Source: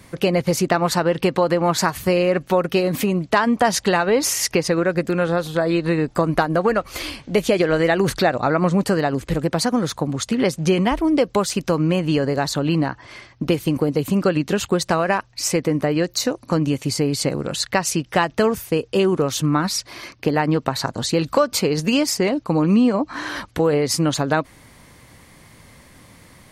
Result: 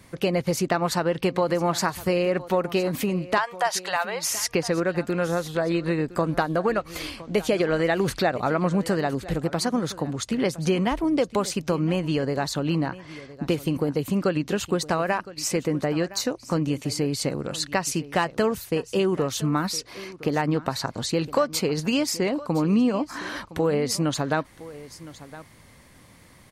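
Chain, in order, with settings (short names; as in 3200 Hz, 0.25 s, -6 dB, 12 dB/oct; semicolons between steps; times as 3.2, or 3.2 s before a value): 3.38–4.3 inverse Chebyshev high-pass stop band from 300 Hz, stop band 40 dB; echo 1.013 s -17.5 dB; gain -5 dB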